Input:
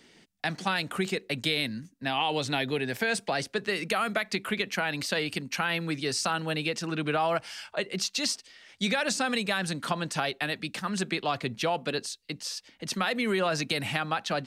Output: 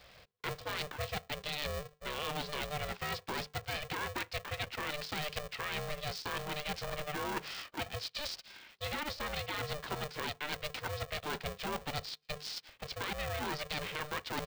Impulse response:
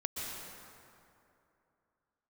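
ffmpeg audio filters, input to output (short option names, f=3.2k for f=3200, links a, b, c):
-af "highpass=81,bandreject=f=50:t=h:w=6,bandreject=f=100:t=h:w=6,bandreject=f=150:t=h:w=6,areverse,acompressor=threshold=-35dB:ratio=6,areverse,aresample=11025,aresample=44100,aeval=exprs='val(0)*sgn(sin(2*PI*300*n/s))':c=same"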